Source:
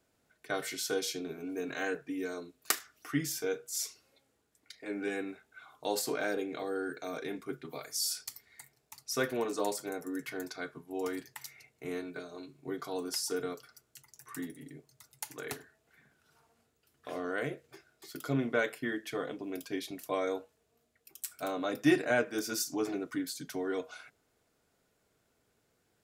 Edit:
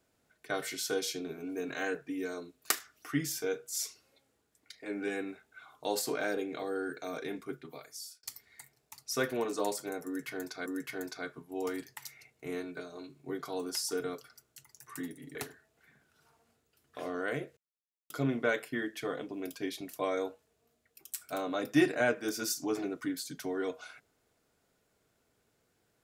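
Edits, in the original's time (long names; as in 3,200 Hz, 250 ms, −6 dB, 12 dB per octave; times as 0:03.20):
0:07.41–0:08.23: fade out
0:10.05–0:10.66: repeat, 2 plays
0:14.74–0:15.45: remove
0:17.67–0:18.20: silence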